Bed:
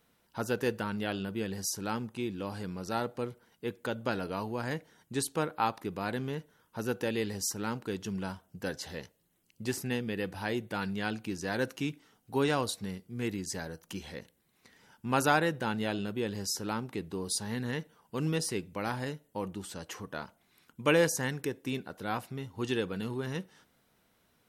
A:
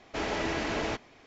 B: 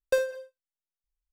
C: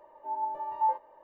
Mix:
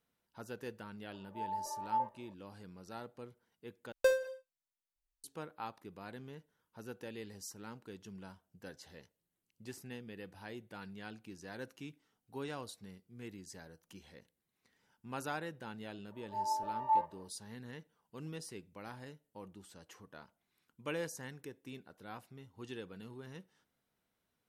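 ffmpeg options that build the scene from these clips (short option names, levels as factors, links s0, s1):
-filter_complex "[3:a]asplit=2[s0][s1];[0:a]volume=0.2[s2];[2:a]bandreject=f=50:t=h:w=6,bandreject=f=100:t=h:w=6,bandreject=f=150:t=h:w=6,bandreject=f=200:t=h:w=6,bandreject=f=250:t=h:w=6,bandreject=f=300:t=h:w=6,bandreject=f=350:t=h:w=6[s3];[s2]asplit=2[s4][s5];[s4]atrim=end=3.924[s6];[s3]atrim=end=1.32,asetpts=PTS-STARTPTS,volume=0.668[s7];[s5]atrim=start=5.236[s8];[s0]atrim=end=1.23,asetpts=PTS-STARTPTS,volume=0.447,afade=t=in:d=0.004:c=hsin,afade=t=out:st=1.226:d=0.004:c=hsin,adelay=1110[s9];[s1]atrim=end=1.23,asetpts=PTS-STARTPTS,volume=0.708,afade=t=in:d=0.1,afade=t=out:st=1.13:d=0.1,adelay=16080[s10];[s6][s7]acrossfade=d=0.004:c1=hsin:c2=hsin[s11];[s11][s8]acrossfade=d=0.004:c1=hsin:c2=hsin[s12];[s12][s9][s10]amix=inputs=3:normalize=0"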